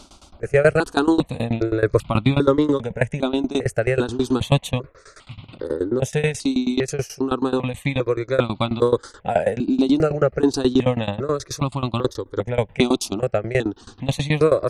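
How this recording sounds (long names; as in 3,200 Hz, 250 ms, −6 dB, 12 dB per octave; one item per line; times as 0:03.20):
tremolo saw down 9.3 Hz, depth 95%
notches that jump at a steady rate 2.5 Hz 480–1,700 Hz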